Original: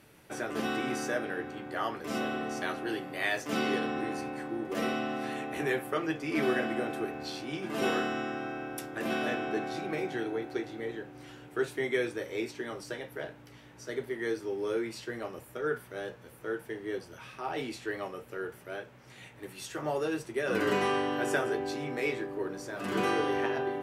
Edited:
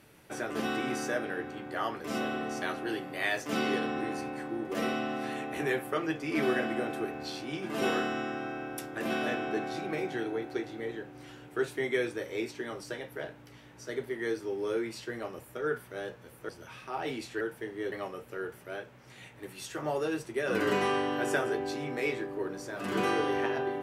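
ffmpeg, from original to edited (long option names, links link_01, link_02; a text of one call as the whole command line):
ffmpeg -i in.wav -filter_complex "[0:a]asplit=4[link_01][link_02][link_03][link_04];[link_01]atrim=end=16.492[link_05];[link_02]atrim=start=16.998:end=17.922[link_06];[link_03]atrim=start=16.488:end=17.002[link_07];[link_04]atrim=start=17.918[link_08];[link_05][link_06]acrossfade=duration=0.004:curve1=hsin:curve2=hsin[link_09];[link_09][link_07]acrossfade=duration=0.004:curve1=hsin:curve2=hsin[link_10];[link_10][link_08]acrossfade=duration=0.004:curve1=hsin:curve2=hsin" out.wav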